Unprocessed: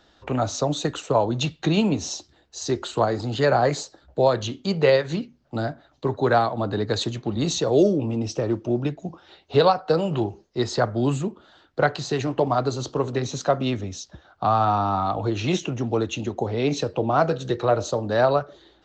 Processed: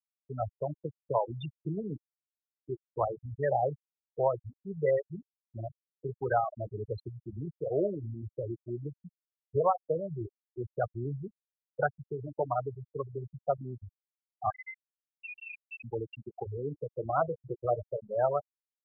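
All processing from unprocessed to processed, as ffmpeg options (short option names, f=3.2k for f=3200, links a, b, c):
-filter_complex "[0:a]asettb=1/sr,asplit=3[a][b][c];[a]atrim=end=14.504[d];[b]atrim=start=14.5:end=15.84,asetpts=PTS-STARTPTS,afade=t=in:d=0.004:c=qsin,afade=t=out:st=1.336:d=0.004:c=qsin,lowpass=f=2.4k:t=q:w=0.5098,lowpass=f=2.4k:t=q:w=0.6013,lowpass=f=2.4k:t=q:w=0.9,lowpass=f=2.4k:t=q:w=2.563,afreqshift=-2800,acompressor=threshold=-26dB:ratio=6:attack=3.2:release=140:knee=1:detection=peak[e];[c]atrim=start=15.836[f];[d][e]acrossfade=d=0.004:c1=hsin:c2=qsin[g];[g][f]acrossfade=d=0.004:c1=qsin:c2=hsin,lowpass=f=3.8k:p=1,afftfilt=real='re*gte(hypot(re,im),0.282)':imag='im*gte(hypot(re,im),0.282)':win_size=1024:overlap=0.75,equalizer=f=250:t=o:w=1.1:g=-14.5,volume=-5.5dB"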